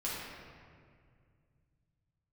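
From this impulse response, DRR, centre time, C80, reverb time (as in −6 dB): −7.5 dB, 122 ms, 0.5 dB, 2.1 s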